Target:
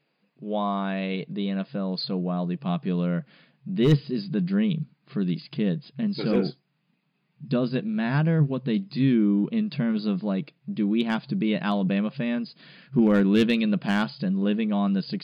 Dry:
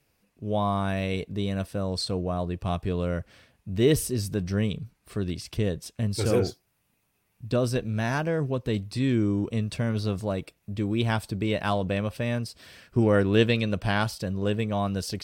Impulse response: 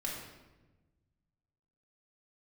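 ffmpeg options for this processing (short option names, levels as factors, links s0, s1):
-af "afftfilt=real='re*between(b*sr/4096,130,5000)':imag='im*between(b*sr/4096,130,5000)':win_size=4096:overlap=0.75,volume=5.62,asoftclip=hard,volume=0.178,asubboost=boost=4.5:cutoff=210"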